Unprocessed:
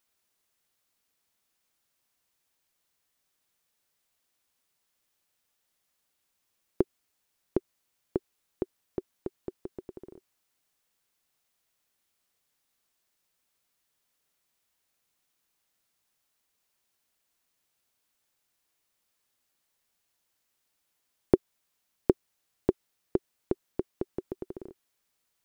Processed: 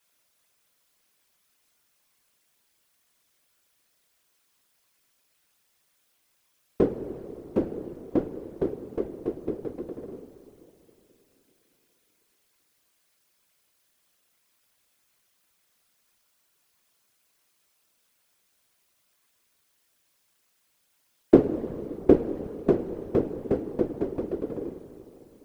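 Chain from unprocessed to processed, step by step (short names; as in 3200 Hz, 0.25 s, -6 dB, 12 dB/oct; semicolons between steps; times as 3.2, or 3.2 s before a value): two-slope reverb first 0.25 s, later 3.6 s, from -18 dB, DRR -4.5 dB; whisperiser; gain +2 dB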